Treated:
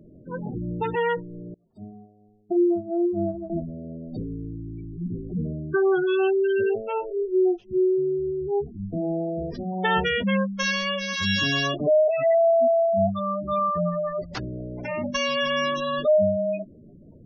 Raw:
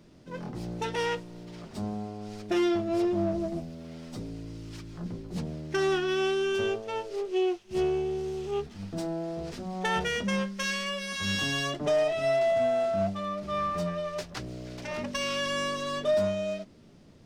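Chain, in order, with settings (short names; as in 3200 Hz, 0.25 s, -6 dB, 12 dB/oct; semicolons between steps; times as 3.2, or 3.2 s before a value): spectral gate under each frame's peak -15 dB strong; 1.54–3.5 upward expander 2.5:1, over -43 dBFS; gain +6.5 dB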